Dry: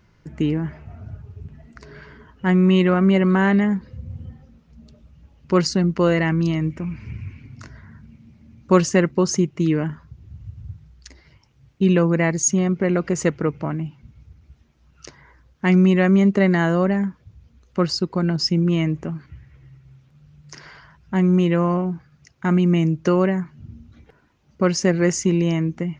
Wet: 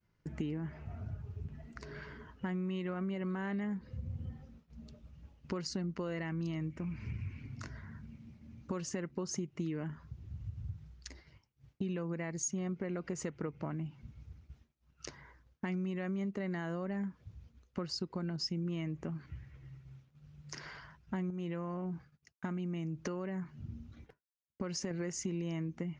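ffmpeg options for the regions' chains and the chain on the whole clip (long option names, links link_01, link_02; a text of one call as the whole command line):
ffmpeg -i in.wav -filter_complex "[0:a]asettb=1/sr,asplit=3[link_01][link_02][link_03];[link_01]atrim=end=21.304[link_04];[link_02]atrim=start=21.3:end=24.91,asetpts=PTS-STARTPTS,afade=type=in:duration=0.004:curve=qsin,afade=type=out:start_time=3.606:duration=0.004:curve=qsin,agate=range=-33dB:threshold=-49dB:ratio=3:release=100:detection=peak,acompressor=threshold=-23dB:ratio=3:attack=3.2:release=140:knee=1:detection=peak[link_05];[link_03]atrim=start=24.906[link_06];[link_04][link_05]acrossfade=duration=0.004:curve1=hsin:curve2=qsin[link_07];[link_07][link_06]acrossfade=duration=0.004:curve1=qsin:curve2=hsin,agate=range=-33dB:threshold=-47dB:ratio=3:detection=peak,alimiter=limit=-12.5dB:level=0:latency=1:release=209,acompressor=threshold=-31dB:ratio=4,volume=-5dB" out.wav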